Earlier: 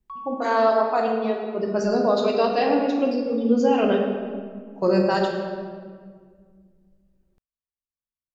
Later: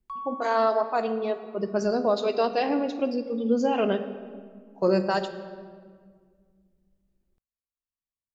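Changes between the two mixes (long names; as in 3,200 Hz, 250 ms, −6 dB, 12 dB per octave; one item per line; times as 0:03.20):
speech: send −10.5 dB
background: remove high-frequency loss of the air 160 metres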